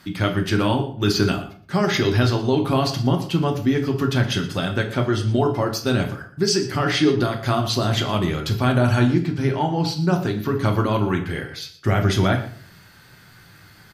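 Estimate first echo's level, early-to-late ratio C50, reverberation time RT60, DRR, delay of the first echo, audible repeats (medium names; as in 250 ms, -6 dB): -16.0 dB, 9.5 dB, 0.50 s, 3.0 dB, 118 ms, 1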